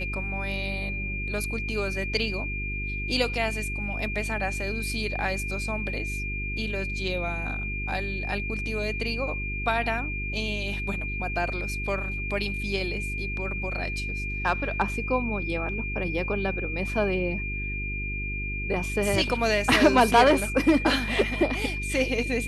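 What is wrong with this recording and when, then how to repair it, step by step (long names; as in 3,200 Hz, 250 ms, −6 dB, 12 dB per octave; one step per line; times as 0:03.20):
mains hum 50 Hz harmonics 8 −33 dBFS
whistle 2,400 Hz −32 dBFS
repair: notch filter 2,400 Hz, Q 30
hum removal 50 Hz, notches 8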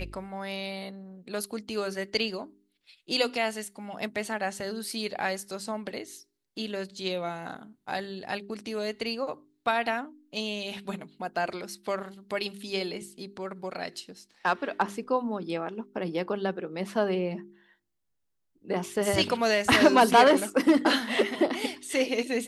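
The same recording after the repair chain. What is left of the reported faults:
none of them is left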